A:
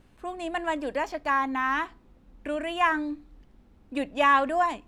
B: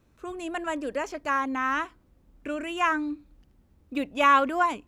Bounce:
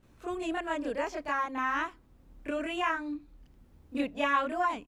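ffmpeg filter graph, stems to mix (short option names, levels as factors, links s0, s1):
-filter_complex "[0:a]volume=0.335,asplit=2[s0][s1];[1:a]acrossover=split=6500[s2][s3];[s3]acompressor=threshold=0.00126:ratio=4:attack=1:release=60[s4];[s2][s4]amix=inputs=2:normalize=0,adelay=28,volume=1.33[s5];[s1]apad=whole_len=216042[s6];[s5][s6]sidechaincompress=threshold=0.0126:ratio=4:attack=6.2:release=873[s7];[s0][s7]amix=inputs=2:normalize=0"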